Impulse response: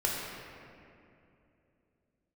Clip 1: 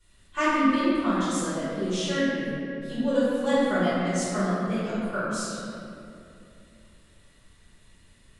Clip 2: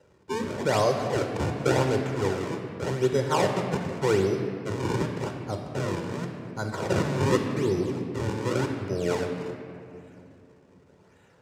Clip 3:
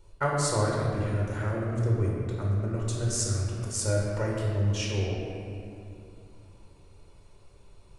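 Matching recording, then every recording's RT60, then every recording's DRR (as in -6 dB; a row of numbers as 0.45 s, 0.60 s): 3; 2.7 s, 2.7 s, 2.7 s; -13.0 dB, 3.5 dB, -4.0 dB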